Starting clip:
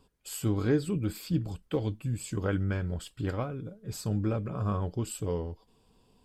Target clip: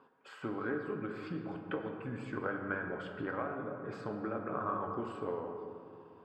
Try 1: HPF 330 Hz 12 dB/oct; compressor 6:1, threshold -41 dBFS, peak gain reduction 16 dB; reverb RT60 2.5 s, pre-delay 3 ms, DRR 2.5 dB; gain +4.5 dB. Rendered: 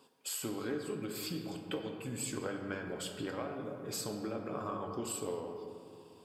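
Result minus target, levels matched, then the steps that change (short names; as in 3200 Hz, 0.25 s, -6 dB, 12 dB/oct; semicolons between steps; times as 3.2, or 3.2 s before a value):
2000 Hz band -5.0 dB
add after compressor: synth low-pass 1500 Hz, resonance Q 2.3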